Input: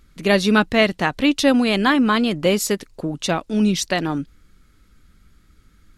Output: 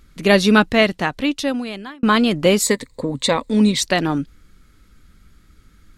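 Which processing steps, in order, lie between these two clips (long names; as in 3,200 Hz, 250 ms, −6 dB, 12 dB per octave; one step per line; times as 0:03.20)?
0:00.53–0:02.03: fade out
0:02.62–0:03.81: EQ curve with evenly spaced ripples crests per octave 1, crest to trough 12 dB
level +3 dB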